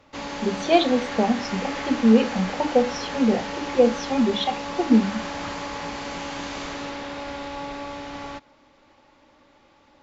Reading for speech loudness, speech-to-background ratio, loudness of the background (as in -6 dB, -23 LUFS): -22.5 LUFS, 9.0 dB, -31.5 LUFS